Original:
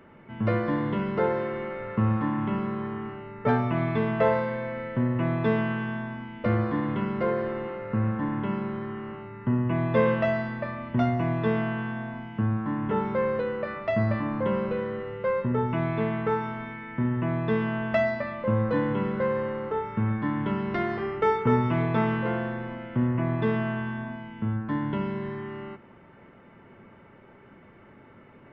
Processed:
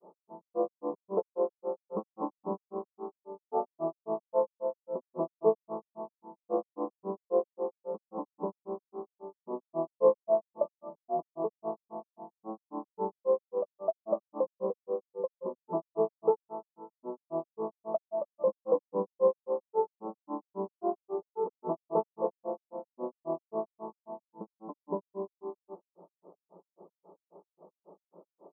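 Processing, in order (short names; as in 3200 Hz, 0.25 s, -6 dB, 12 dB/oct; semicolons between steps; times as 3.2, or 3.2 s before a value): FFT band-pass 170–1400 Hz; grains 0.145 s, grains 3.7/s, spray 14 ms, pitch spread up and down by 0 st; fixed phaser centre 570 Hz, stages 4; gain +6 dB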